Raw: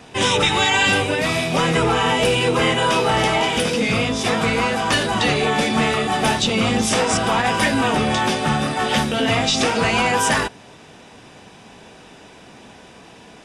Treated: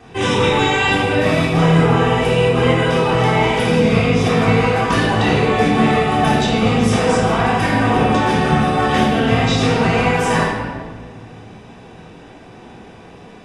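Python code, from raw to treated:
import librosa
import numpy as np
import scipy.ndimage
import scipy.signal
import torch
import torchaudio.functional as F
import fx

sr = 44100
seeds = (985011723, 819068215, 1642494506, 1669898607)

y = fx.high_shelf(x, sr, hz=2400.0, db=-9.0)
y = fx.rider(y, sr, range_db=10, speed_s=0.5)
y = fx.room_shoebox(y, sr, seeds[0], volume_m3=1600.0, walls='mixed', distance_m=3.6)
y = F.gain(torch.from_numpy(y), -2.5).numpy()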